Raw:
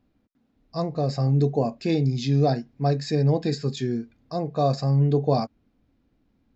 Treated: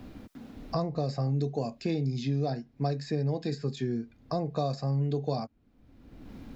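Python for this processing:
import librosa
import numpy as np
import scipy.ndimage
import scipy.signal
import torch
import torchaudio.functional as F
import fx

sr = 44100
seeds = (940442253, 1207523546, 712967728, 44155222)

y = fx.band_squash(x, sr, depth_pct=100)
y = F.gain(torch.from_numpy(y), -8.0).numpy()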